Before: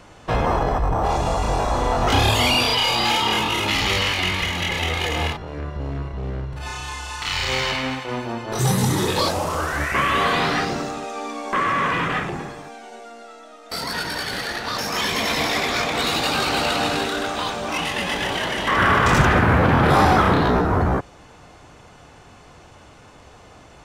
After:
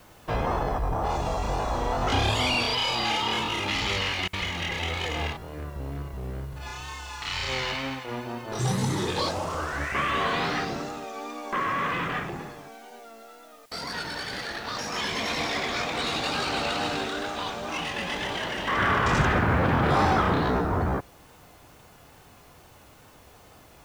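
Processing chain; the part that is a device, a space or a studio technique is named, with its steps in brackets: worn cassette (low-pass 7.9 kHz 12 dB/octave; wow and flutter; level dips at 4.28/13.66 s, 50 ms -28 dB; white noise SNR 32 dB); trim -6.5 dB

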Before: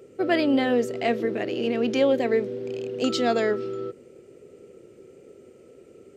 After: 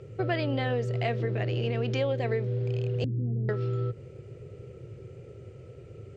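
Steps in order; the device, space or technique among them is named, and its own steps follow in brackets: 3.04–3.49 s: inverse Chebyshev band-stop 1.1–7.3 kHz, stop band 70 dB; jukebox (low-pass 5 kHz 12 dB/octave; resonant low shelf 170 Hz +12.5 dB, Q 3; compression 3:1, threshold -29 dBFS, peak gain reduction 9 dB); trim +2 dB

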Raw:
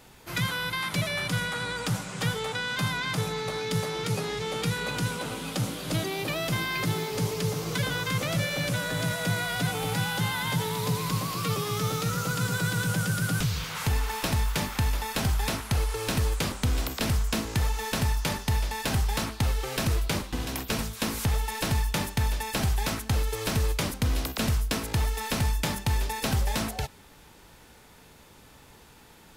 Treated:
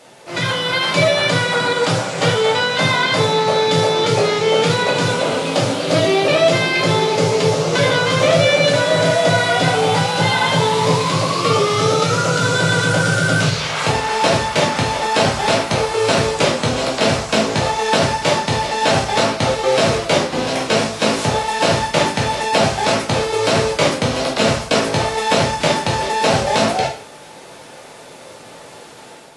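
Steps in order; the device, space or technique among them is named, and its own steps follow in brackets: filmed off a television (band-pass 190–6500 Hz; peaking EQ 600 Hz +11 dB 0.58 oct; reverberation RT60 0.45 s, pre-delay 6 ms, DRR -3.5 dB; white noise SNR 29 dB; level rider gain up to 6 dB; trim +3 dB; AAC 48 kbps 24 kHz)

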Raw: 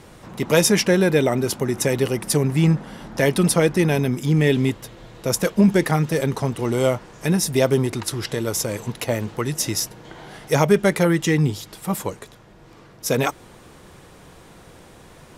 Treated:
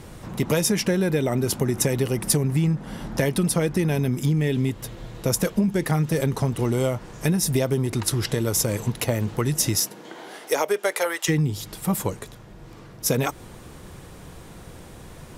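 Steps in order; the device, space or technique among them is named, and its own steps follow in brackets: 9.76–11.28 s: high-pass 170 Hz -> 650 Hz 24 dB/octave; ASMR close-microphone chain (bass shelf 200 Hz +8 dB; compression 10:1, threshold -18 dBFS, peak gain reduction 12 dB; treble shelf 9 kHz +6.5 dB)

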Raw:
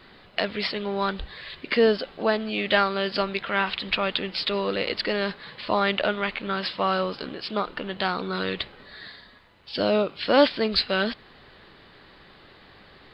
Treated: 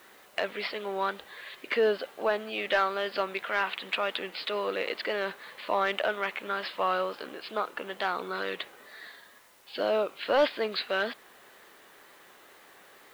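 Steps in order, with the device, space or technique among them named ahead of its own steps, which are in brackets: tape answering machine (band-pass 400–2900 Hz; saturation -12.5 dBFS, distortion -18 dB; wow and flutter; white noise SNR 30 dB); trim -2 dB

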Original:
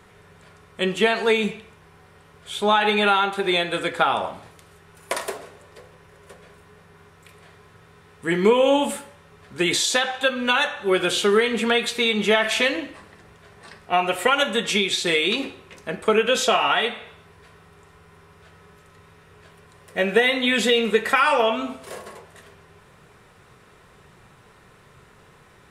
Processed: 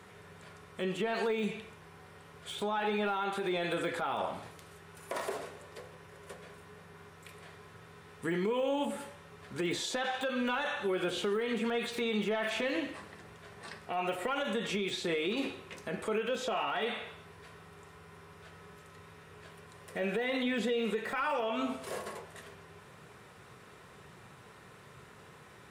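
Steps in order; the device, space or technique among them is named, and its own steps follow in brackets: podcast mastering chain (high-pass 81 Hz; de-esser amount 95%; compression 4:1, threshold -26 dBFS, peak gain reduction 11.5 dB; peak limiter -22 dBFS, peak gain reduction 9 dB; trim -1.5 dB; MP3 112 kbps 48 kHz)

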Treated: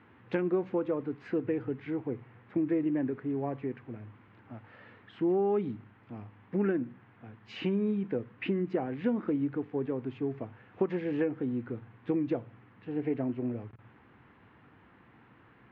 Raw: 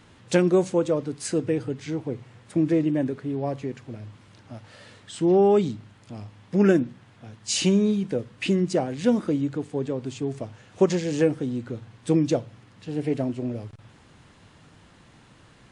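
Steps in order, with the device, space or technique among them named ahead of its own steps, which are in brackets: bass amplifier (compression 5:1, threshold -21 dBFS, peak gain reduction 8 dB; cabinet simulation 88–2300 Hz, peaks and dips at 93 Hz -5 dB, 160 Hz -8 dB, 590 Hz -7 dB); trim -2.5 dB

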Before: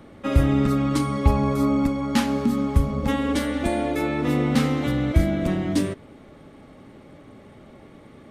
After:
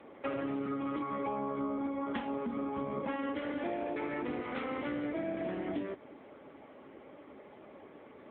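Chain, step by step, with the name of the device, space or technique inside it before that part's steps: 4.41–4.84 s: high-pass 590 Hz -> 250 Hz 6 dB/octave; voicemail (band-pass 350–2900 Hz; compression 10:1, threshold -31 dBFS, peak gain reduction 11 dB; AMR-NB 6.7 kbps 8 kHz)

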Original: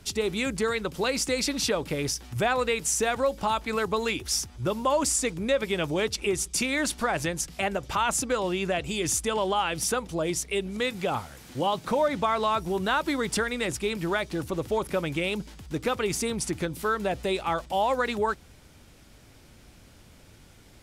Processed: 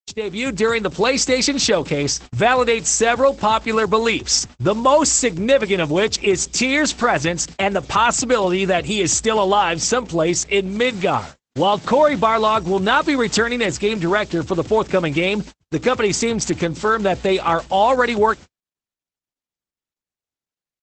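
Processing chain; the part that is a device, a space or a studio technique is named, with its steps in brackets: video call (high-pass 100 Hz 6 dB/octave; level rider gain up to 9 dB; gate -32 dBFS, range -57 dB; trim +2 dB; Opus 12 kbps 48 kHz)

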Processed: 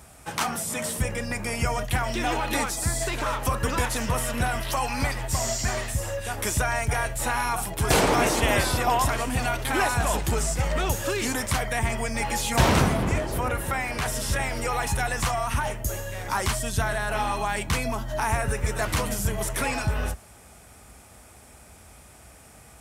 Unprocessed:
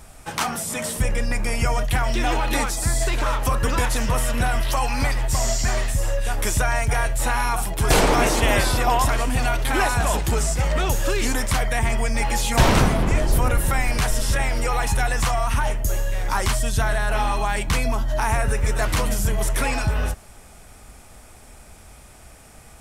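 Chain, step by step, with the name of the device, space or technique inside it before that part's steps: 13.18–14.06 s: tone controls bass -5 dB, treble -6 dB; high-pass 53 Hz 24 dB/octave; exciter from parts (in parallel at -13 dB: high-pass 2.3 kHz + saturation -32 dBFS, distortion -8 dB + high-pass 5 kHz); on the sum: trim -2.5 dB

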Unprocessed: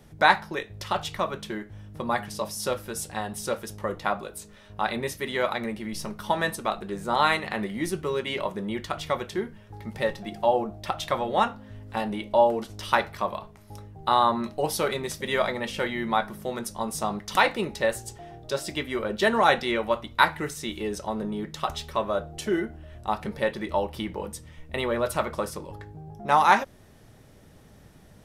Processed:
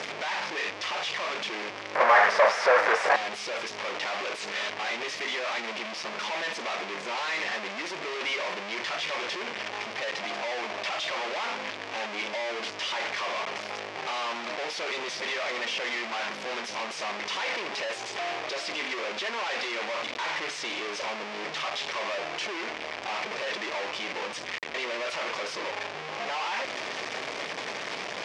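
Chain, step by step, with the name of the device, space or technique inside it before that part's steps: home computer beeper (one-bit comparator; cabinet simulation 590–5100 Hz, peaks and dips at 820 Hz -3 dB, 1.4 kHz -4 dB, 2.3 kHz +4 dB, 4 kHz -4 dB); 1.95–3.16 s: high-order bell 940 Hz +15.5 dB 2.5 oct

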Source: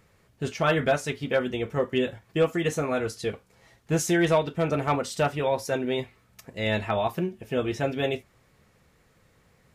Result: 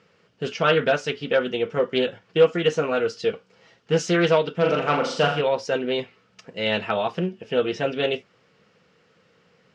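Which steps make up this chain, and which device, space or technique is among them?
4.56–5.41 s: flutter echo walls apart 6.9 m, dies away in 0.54 s; full-range speaker at full volume (loudspeaker Doppler distortion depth 0.24 ms; cabinet simulation 160–6300 Hz, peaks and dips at 180 Hz +6 dB, 470 Hz +8 dB, 1.4 kHz +6 dB, 2.9 kHz +9 dB, 5 kHz +5 dB)

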